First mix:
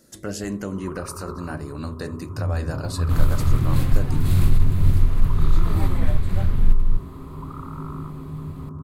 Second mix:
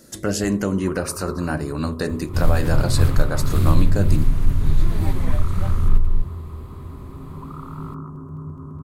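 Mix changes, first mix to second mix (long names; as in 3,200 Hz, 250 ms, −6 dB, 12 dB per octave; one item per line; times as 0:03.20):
speech +7.5 dB
second sound: entry −0.75 s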